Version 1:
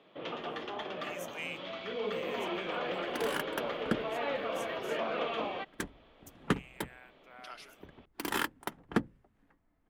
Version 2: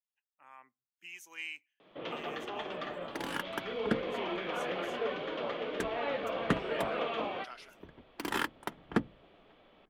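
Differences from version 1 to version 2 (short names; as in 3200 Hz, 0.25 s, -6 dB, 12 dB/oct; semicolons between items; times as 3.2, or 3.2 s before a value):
first sound: entry +1.80 s; master: add high shelf 8400 Hz -8.5 dB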